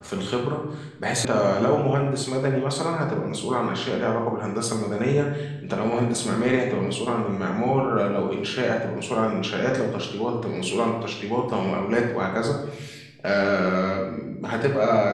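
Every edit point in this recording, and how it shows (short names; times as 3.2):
1.25 sound cut off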